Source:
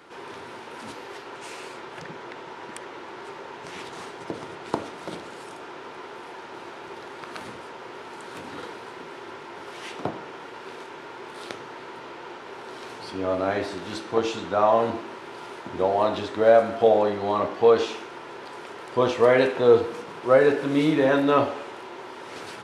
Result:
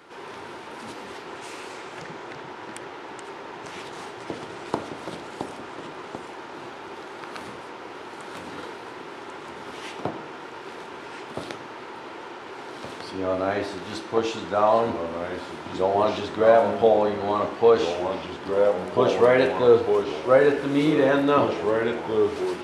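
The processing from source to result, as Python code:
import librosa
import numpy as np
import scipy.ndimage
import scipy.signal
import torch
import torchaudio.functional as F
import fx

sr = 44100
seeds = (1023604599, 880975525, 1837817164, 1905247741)

y = fx.echo_pitch(x, sr, ms=88, semitones=-2, count=2, db_per_echo=-6.0)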